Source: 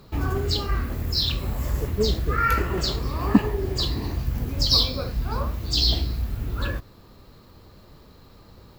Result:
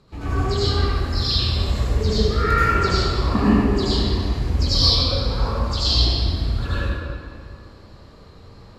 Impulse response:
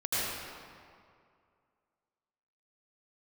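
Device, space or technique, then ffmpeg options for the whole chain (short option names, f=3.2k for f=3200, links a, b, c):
stairwell: -filter_complex "[1:a]atrim=start_sample=2205[a];[0:a][a]afir=irnorm=-1:irlink=0,lowpass=f=9.7k:w=0.5412,lowpass=f=9.7k:w=1.3066,volume=-4.5dB"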